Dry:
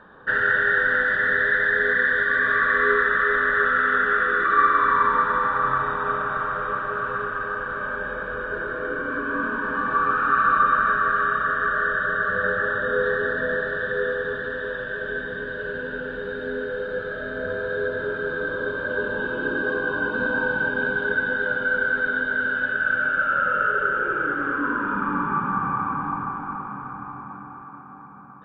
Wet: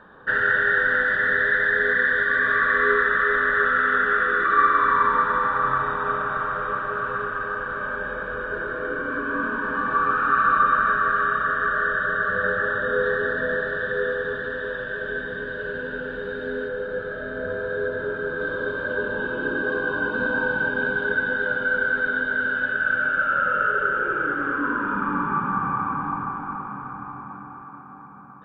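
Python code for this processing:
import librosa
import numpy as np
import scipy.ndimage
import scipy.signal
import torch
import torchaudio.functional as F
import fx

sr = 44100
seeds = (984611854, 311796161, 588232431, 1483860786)

y = fx.high_shelf(x, sr, hz=3300.0, db=-8.0, at=(16.68, 18.4))
y = fx.air_absorb(y, sr, metres=54.0, at=(18.93, 19.72))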